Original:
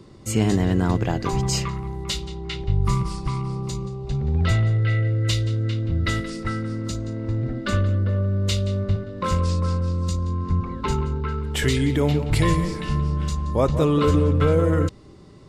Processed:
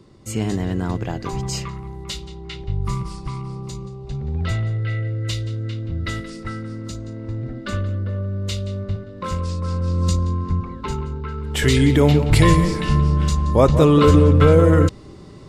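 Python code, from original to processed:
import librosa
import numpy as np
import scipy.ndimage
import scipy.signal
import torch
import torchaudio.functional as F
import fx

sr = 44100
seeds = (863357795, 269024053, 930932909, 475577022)

y = fx.gain(x, sr, db=fx.line((9.59, -3.0), (10.09, 6.0), (10.79, -2.5), (11.33, -2.5), (11.78, 6.0)))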